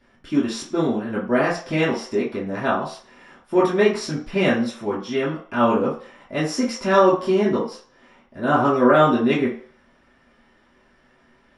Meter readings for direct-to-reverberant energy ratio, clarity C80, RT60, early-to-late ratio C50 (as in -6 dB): -10.0 dB, 11.0 dB, 0.45 s, 5.5 dB